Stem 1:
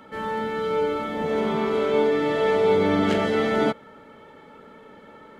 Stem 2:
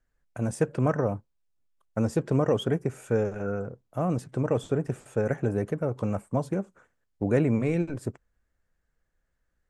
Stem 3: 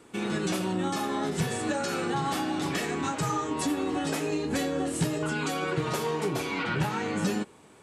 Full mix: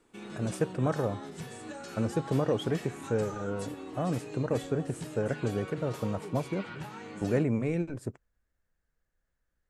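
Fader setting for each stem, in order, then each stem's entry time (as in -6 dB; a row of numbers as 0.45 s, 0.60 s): mute, -4.0 dB, -13.0 dB; mute, 0.00 s, 0.00 s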